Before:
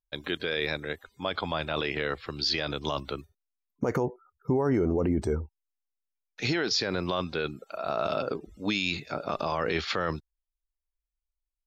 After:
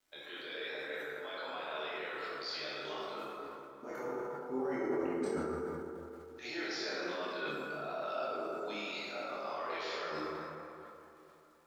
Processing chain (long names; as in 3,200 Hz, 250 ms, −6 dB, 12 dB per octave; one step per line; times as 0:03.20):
high-pass filter 480 Hz 12 dB per octave
reversed playback
downward compressor, threshold −42 dBFS, peak gain reduction 17 dB
reversed playback
brickwall limiter −36.5 dBFS, peak gain reduction 8.5 dB
surface crackle 220 per second −63 dBFS
multi-voice chorus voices 4, 0.2 Hz, delay 26 ms, depth 3.1 ms
on a send: delay with a low-pass on its return 474 ms, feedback 54%, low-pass 3,300 Hz, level −23.5 dB
on the sum: dense smooth reverb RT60 3 s, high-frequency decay 0.4×, DRR −7 dB
level that may fall only so fast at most 27 dB per second
level +3.5 dB